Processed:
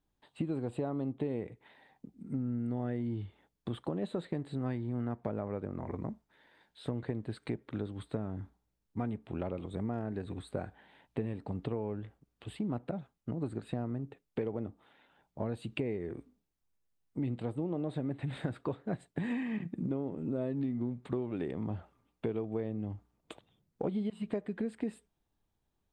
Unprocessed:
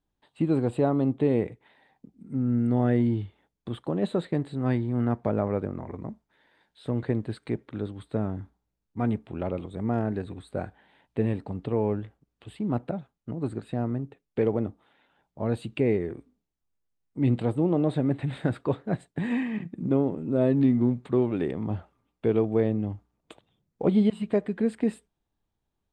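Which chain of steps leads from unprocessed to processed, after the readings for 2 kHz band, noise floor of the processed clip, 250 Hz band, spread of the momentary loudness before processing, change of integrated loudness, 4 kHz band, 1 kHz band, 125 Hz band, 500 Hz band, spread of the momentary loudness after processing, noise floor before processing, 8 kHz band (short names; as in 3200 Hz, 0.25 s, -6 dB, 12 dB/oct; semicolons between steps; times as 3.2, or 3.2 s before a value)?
-7.5 dB, -82 dBFS, -9.5 dB, 12 LU, -10.0 dB, -5.0 dB, -9.0 dB, -9.0 dB, -10.5 dB, 9 LU, -82 dBFS, n/a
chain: compressor 6:1, threshold -32 dBFS, peak gain reduction 14 dB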